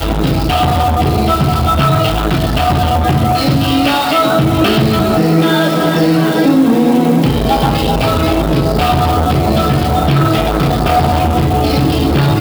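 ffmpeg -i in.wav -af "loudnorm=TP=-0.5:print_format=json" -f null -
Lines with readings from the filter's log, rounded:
"input_i" : "-12.3",
"input_tp" : "-1.9",
"input_lra" : "1.1",
"input_thresh" : "-22.3",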